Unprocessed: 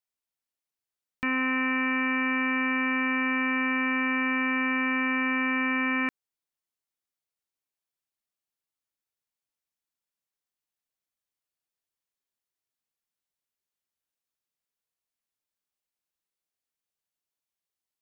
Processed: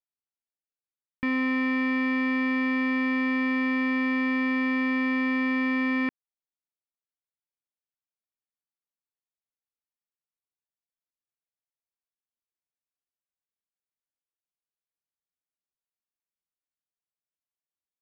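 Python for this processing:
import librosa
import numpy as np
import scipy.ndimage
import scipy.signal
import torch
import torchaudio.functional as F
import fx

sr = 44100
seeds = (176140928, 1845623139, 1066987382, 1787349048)

y = fx.leveller(x, sr, passes=3)
y = fx.air_absorb(y, sr, metres=430.0)
y = F.gain(torch.from_numpy(y), -2.0).numpy()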